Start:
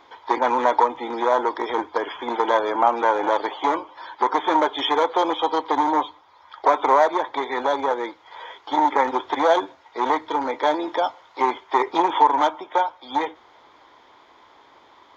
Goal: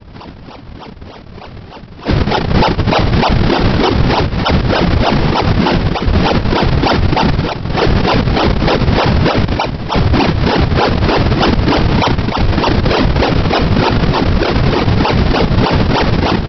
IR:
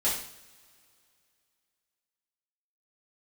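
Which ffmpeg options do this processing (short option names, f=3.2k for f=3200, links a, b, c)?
-filter_complex "[0:a]areverse,asplit=2[a][b];[b]adelay=13,volume=-11dB[c];[a][c]amix=inputs=2:normalize=0,asetrate=40572,aresample=44100,asplit=2[d][e];[e]adelay=163.3,volume=-10dB,highshelf=f=4k:g=-3.67[f];[d][f]amix=inputs=2:normalize=0[g];[1:a]atrim=start_sample=2205,asetrate=27783,aresample=44100[h];[g][h]afir=irnorm=-1:irlink=0,acrossover=split=500|1200[i][j][k];[i]aeval=exprs='sgn(val(0))*max(abs(val(0))-0.0531,0)':c=same[l];[l][j][k]amix=inputs=3:normalize=0,acompressor=threshold=-14dB:ratio=6,flanger=delay=22.5:depth=2.4:speed=0.65,aresample=11025,acrusher=samples=25:mix=1:aa=0.000001:lfo=1:lforange=40:lforate=3.3,aresample=44100,afftfilt=real='hypot(re,im)*cos(2*PI*random(0))':imag='hypot(re,im)*sin(2*PI*random(1))':win_size=512:overlap=0.75,alimiter=level_in=19.5dB:limit=-1dB:release=50:level=0:latency=1,volume=-1dB"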